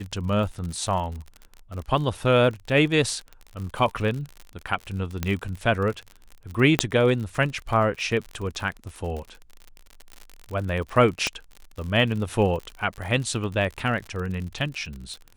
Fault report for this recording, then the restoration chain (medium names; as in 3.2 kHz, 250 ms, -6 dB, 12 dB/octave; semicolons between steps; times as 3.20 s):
crackle 53 per s -31 dBFS
5.23 s: pop -11 dBFS
6.79 s: pop -3 dBFS
11.27 s: pop -10 dBFS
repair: de-click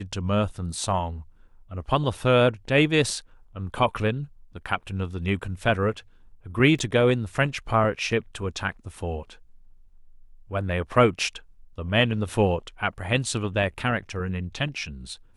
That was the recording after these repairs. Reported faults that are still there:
6.79 s: pop